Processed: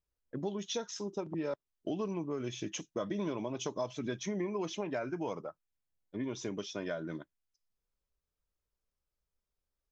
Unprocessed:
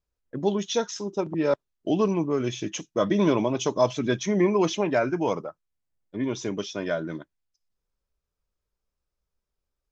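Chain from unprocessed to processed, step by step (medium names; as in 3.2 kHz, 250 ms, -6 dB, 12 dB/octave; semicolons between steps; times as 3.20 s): compression 4:1, threshold -28 dBFS, peak gain reduction 11 dB; trim -5.5 dB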